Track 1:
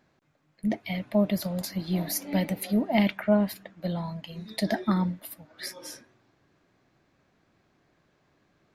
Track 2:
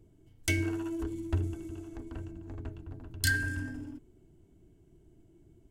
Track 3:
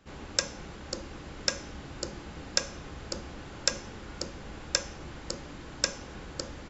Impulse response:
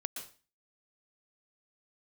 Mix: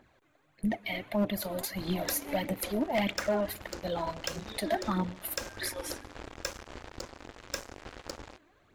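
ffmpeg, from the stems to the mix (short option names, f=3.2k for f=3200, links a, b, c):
-filter_complex "[0:a]equalizer=f=5.2k:t=o:w=0.41:g=-9,aphaser=in_gain=1:out_gain=1:delay=3.4:decay=0.59:speed=1.6:type=triangular,volume=2dB,asplit=3[a][b][c];[b]volume=-20.5dB[d];[1:a]adelay=2150,volume=-9.5dB[e];[2:a]highshelf=f=2.2k:g=-5.5,acrusher=bits=5:mix=0:aa=0.5,adelay=1700,volume=2.5dB[f];[c]apad=whole_len=346204[g];[e][g]sidechaincompress=threshold=-33dB:ratio=8:attack=16:release=900[h];[3:a]atrim=start_sample=2205[i];[d][i]afir=irnorm=-1:irlink=0[j];[a][h][f][j]amix=inputs=4:normalize=0,equalizer=f=170:w=2.5:g=-11,asoftclip=type=hard:threshold=-16.5dB,alimiter=limit=-22dB:level=0:latency=1:release=261"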